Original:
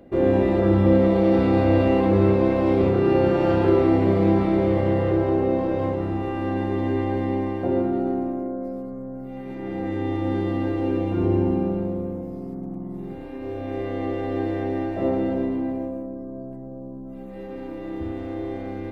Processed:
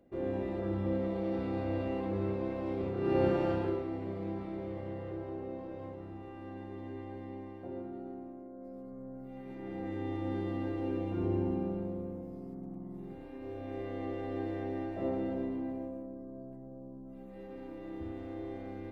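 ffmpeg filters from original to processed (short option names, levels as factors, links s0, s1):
-af "volume=1.06,afade=t=in:st=2.96:d=0.27:silence=0.398107,afade=t=out:st=3.23:d=0.61:silence=0.266073,afade=t=in:st=8.51:d=0.55:silence=0.375837"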